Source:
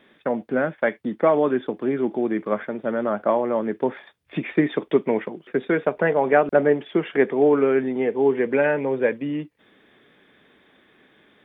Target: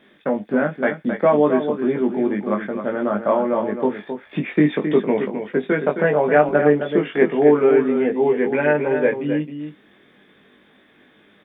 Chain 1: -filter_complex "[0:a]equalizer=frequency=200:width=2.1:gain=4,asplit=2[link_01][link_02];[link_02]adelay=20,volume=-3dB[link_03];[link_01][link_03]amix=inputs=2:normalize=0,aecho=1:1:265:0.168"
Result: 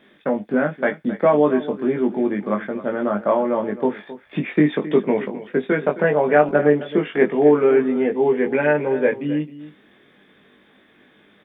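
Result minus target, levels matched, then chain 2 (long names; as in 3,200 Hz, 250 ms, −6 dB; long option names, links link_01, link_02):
echo-to-direct −7 dB
-filter_complex "[0:a]equalizer=frequency=200:width=2.1:gain=4,asplit=2[link_01][link_02];[link_02]adelay=20,volume=-3dB[link_03];[link_01][link_03]amix=inputs=2:normalize=0,aecho=1:1:265:0.376"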